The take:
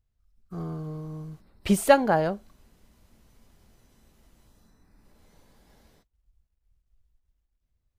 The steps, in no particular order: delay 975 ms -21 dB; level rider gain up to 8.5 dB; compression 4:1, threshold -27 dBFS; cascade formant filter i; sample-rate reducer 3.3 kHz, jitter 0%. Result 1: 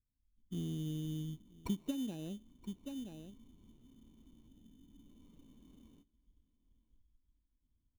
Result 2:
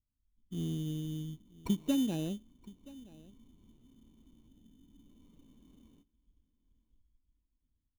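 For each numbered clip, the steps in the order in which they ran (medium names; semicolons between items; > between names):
delay > level rider > compression > cascade formant filter > sample-rate reducer; level rider > cascade formant filter > compression > delay > sample-rate reducer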